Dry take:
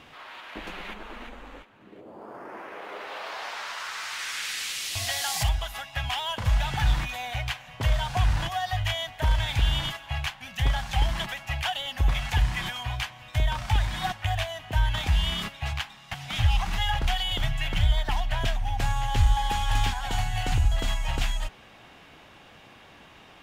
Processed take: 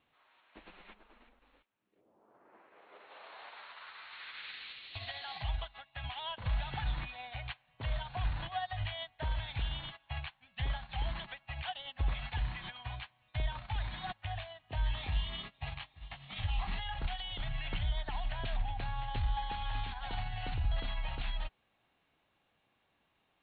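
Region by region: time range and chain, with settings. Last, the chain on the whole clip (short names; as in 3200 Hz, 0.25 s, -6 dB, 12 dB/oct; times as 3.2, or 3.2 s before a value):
1.39–1.96 gate -47 dBFS, range -8 dB + high shelf 2600 Hz +9.5 dB
14.66–16.8 notch 1500 Hz, Q 10 + doubler 21 ms -5 dB + echo 0.876 s -16.5 dB
whole clip: Chebyshev low-pass 4300 Hz, order 8; limiter -23.5 dBFS; upward expander 2.5:1, over -43 dBFS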